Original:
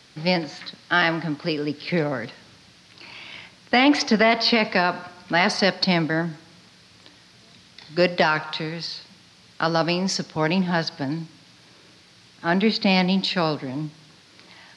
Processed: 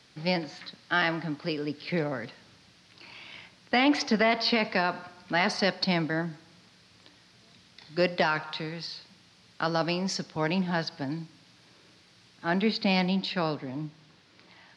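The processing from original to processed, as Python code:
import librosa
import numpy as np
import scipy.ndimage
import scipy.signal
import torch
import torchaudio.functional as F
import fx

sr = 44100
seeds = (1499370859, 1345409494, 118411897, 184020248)

y = fx.high_shelf(x, sr, hz=6900.0, db=fx.steps((0.0, -2.5), (13.09, -12.0)))
y = F.gain(torch.from_numpy(y), -6.0).numpy()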